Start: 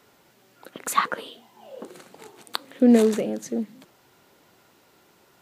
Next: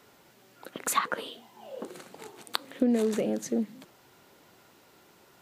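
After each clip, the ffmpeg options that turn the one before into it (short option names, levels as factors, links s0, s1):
-af "acompressor=threshold=0.0794:ratio=6"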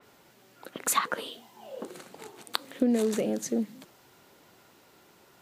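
-af "adynamicequalizer=threshold=0.00562:dfrequency=3800:dqfactor=0.7:tfrequency=3800:tqfactor=0.7:attack=5:release=100:ratio=0.375:range=2:mode=boostabove:tftype=highshelf"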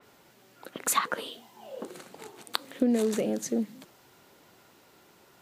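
-af anull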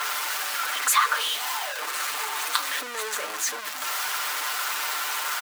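-af "aeval=exprs='val(0)+0.5*0.0631*sgn(val(0))':c=same,highpass=f=1200:t=q:w=1.6,aecho=1:1:6.7:0.65"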